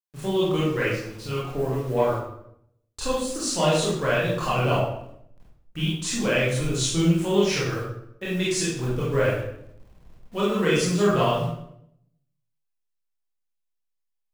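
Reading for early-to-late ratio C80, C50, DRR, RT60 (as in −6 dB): 4.5 dB, 0.5 dB, −8.0 dB, 0.75 s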